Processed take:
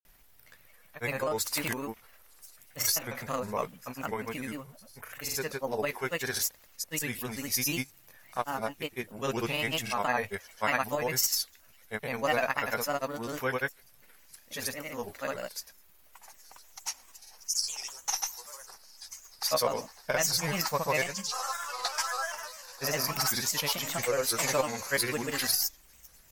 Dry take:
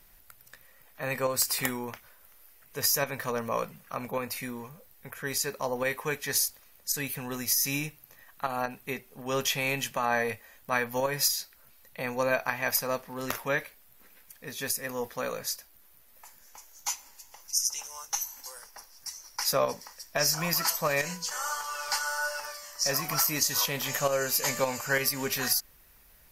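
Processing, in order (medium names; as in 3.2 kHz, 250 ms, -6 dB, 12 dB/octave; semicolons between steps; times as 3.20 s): feedback echo behind a high-pass 1013 ms, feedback 51%, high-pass 5 kHz, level -22 dB; granulator, pitch spread up and down by 3 st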